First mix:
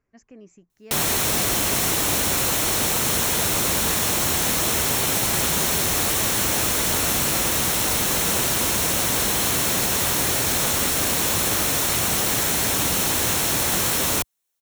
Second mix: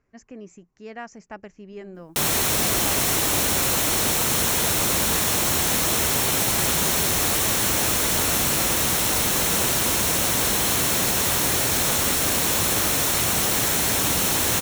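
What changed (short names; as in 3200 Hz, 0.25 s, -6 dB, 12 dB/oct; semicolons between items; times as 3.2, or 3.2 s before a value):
speech +5.5 dB; background: entry +1.25 s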